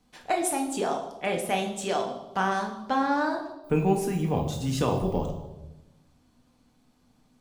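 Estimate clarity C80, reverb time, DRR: 9.5 dB, 1.0 s, 1.5 dB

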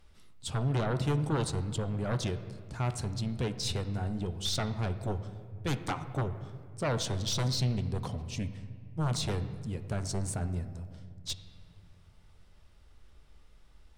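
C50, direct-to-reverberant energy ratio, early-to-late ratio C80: 12.0 dB, 10.0 dB, 13.0 dB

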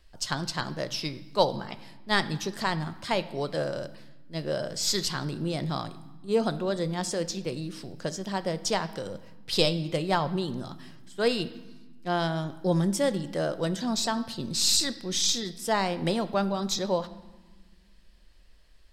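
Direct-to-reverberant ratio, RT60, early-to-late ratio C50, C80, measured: 12.0 dB, 1.4 s, 15.5 dB, 17.5 dB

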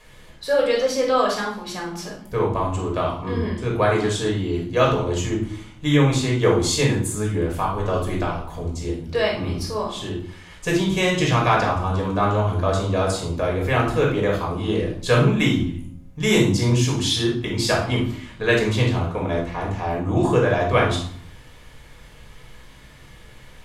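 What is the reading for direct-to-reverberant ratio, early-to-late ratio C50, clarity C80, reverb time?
−2.5 dB, 4.0 dB, 9.5 dB, 0.60 s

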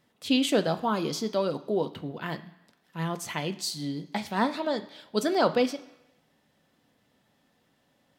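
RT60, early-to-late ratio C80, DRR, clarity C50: 1.0 s, 17.5 dB, 8.0 dB, 15.0 dB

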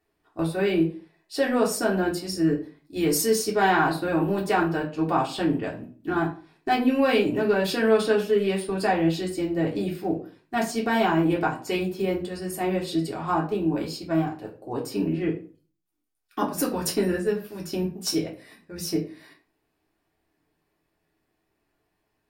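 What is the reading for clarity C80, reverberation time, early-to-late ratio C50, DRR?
15.0 dB, 0.40 s, 10.5 dB, −3.5 dB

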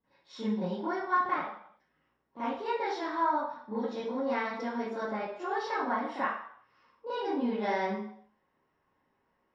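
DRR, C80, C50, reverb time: −16.0 dB, 5.0 dB, −0.5 dB, 0.60 s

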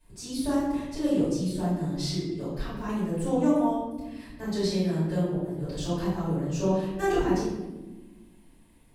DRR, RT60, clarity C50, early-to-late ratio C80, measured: −14.5 dB, 1.2 s, 0.0 dB, 3.0 dB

